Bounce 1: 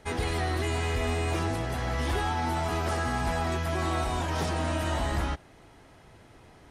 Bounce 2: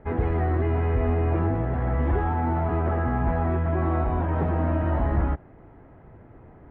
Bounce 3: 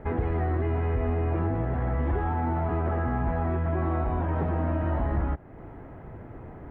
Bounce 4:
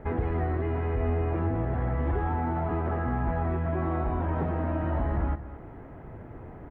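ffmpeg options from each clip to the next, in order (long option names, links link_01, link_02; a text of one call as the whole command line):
ffmpeg -i in.wav -af "lowpass=frequency=2000:width=0.5412,lowpass=frequency=2000:width=1.3066,tiltshelf=frequency=890:gain=5.5,volume=1.5dB" out.wav
ffmpeg -i in.wav -af "acompressor=threshold=-37dB:ratio=2,volume=6dB" out.wav
ffmpeg -i in.wav -af "aecho=1:1:224:0.211,volume=-1dB" out.wav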